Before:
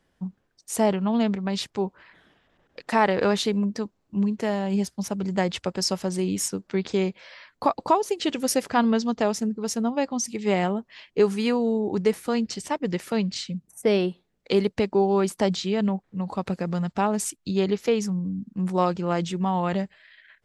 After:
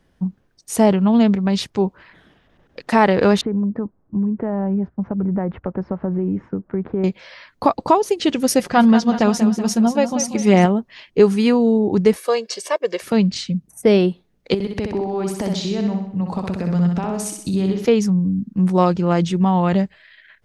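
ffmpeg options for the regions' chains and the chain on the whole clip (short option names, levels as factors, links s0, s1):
-filter_complex "[0:a]asettb=1/sr,asplit=3[s0][s1][s2];[s0]atrim=end=3.414[s3];[s1]atrim=start=3.41:end=7.04,asetpts=PTS-STARTPTS,afade=t=in:d=0.004:c=qsin,afade=t=out:st=3.626:d=0.004:c=qsin,lowpass=f=1500:w=0.5412,lowpass=f=1500:w=1.3066,acompressor=threshold=0.0501:ratio=5:attack=3.2:release=140:knee=1:detection=peak[s4];[s2]atrim=start=7.036[s5];[s3][s4]acrossfade=d=0.004:c1=hsin:c2=qsin[s6];[s6][s5]acrossfade=d=0.004:c1=qsin:c2=hsin,asettb=1/sr,asplit=3[s7][s8][s9];[s7]atrim=end=8.594[s10];[s8]atrim=start=8.59:end=10.66,asetpts=PTS-STARTPTS,afade=t=in:d=0.004:c=qsin,afade=t=out:st=2.066:d=0.004:c=qsin,aecho=1:1:5.6:0.51,atrim=end_sample=91287,aecho=1:1:188|376|564|752|940:0.299|0.149|0.0746|0.0373|0.0187,atrim=end_sample=91287[s11];[s9]atrim=start=10.656[s12];[s10][s11]acrossfade=d=0.004:c1=hsin:c2=qsin[s13];[s13][s12]acrossfade=d=0.004:c1=qsin:c2=hsin,asettb=1/sr,asplit=3[s14][s15][s16];[s14]atrim=end=12.164[s17];[s15]atrim=start=12.16:end=13.02,asetpts=PTS-STARTPTS,afade=t=in:d=0.004:c=qsin,afade=t=out:st=0.856:d=0.004:c=qsin,highpass=f=360:w=0.5412,highpass=f=360:w=1.3066,aecho=1:1:1.8:0.76,atrim=end_sample=37926[s18];[s16]atrim=start=13.016[s19];[s17][s18]acrossfade=d=0.004:c1=hsin:c2=qsin[s20];[s20][s19]acrossfade=d=0.004:c1=qsin:c2=hsin,asettb=1/sr,asplit=3[s21][s22][s23];[s21]atrim=end=14.544[s24];[s22]atrim=start=14.54:end=17.85,asetpts=PTS-STARTPTS,afade=t=in:d=0.004:c=qsin,afade=t=out:st=3.306:d=0.004:c=qsin,acompressor=threshold=0.0398:ratio=6:attack=3.2:release=140:knee=1:detection=peak,aecho=1:1:63|126|189|252|315|378|441:0.596|0.304|0.155|0.079|0.0403|0.0206|0.0105,atrim=end_sample=145971[s25];[s23]atrim=start=17.846[s26];[s24][s25]acrossfade=d=0.004:c1=hsin:c2=qsin[s27];[s27][s26]acrossfade=d=0.004:c1=qsin:c2=hsin,lowshelf=f=310:g=7,bandreject=f=7500:w=12,volume=1.68"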